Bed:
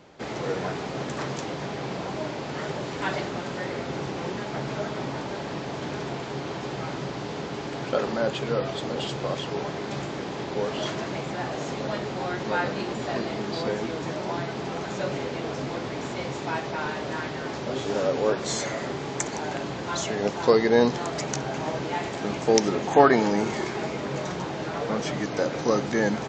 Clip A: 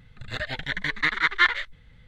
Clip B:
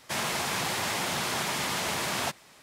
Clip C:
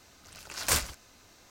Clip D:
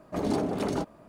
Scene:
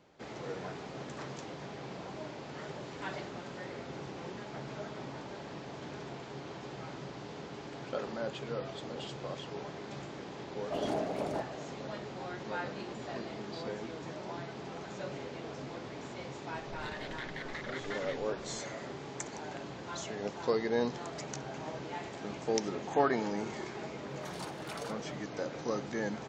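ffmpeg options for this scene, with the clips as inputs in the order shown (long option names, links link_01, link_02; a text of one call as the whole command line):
ffmpeg -i bed.wav -i cue0.wav -i cue1.wav -i cue2.wav -i cue3.wav -filter_complex "[4:a]asplit=2[link_01][link_02];[0:a]volume=-11.5dB[link_03];[link_01]equalizer=frequency=650:width=1.5:gain=12.5[link_04];[1:a]acompressor=threshold=-33dB:ratio=6:attack=3.2:release=140:knee=1:detection=peak[link_05];[link_02]highpass=1400[link_06];[link_04]atrim=end=1.08,asetpts=PTS-STARTPTS,volume=-12dB,afade=type=in:duration=0.004:curve=hsin,afade=type=out:start_time=1.076:duration=0.004:curve=hsin,adelay=466578S[link_07];[link_05]atrim=end=2.07,asetpts=PTS-STARTPTS,volume=-7dB,afade=type=in:duration=0.004:curve=hsin,afade=type=out:start_time=2.066:duration=0.004:curve=hsin,adelay=728532S[link_08];[link_06]atrim=end=1.08,asetpts=PTS-STARTPTS,volume=-4dB,afade=type=in:duration=0.004:curve=hsin,afade=type=out:start_time=1.076:duration=0.004:curve=hsin,adelay=24090[link_09];[link_03][link_07][link_08][link_09]amix=inputs=4:normalize=0" out.wav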